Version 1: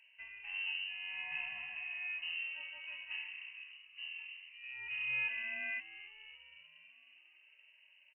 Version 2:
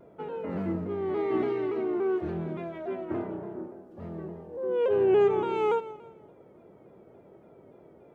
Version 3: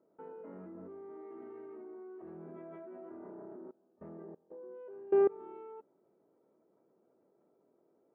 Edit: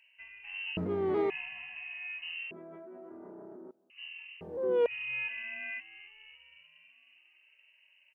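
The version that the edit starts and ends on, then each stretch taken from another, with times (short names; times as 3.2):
1
0.77–1.3 from 2
2.51–3.9 from 3
4.41–4.86 from 2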